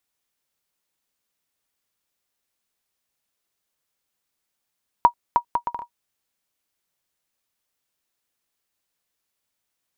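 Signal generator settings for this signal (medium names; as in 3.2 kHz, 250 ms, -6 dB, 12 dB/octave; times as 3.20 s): bouncing ball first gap 0.31 s, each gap 0.62, 955 Hz, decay 88 ms -3 dBFS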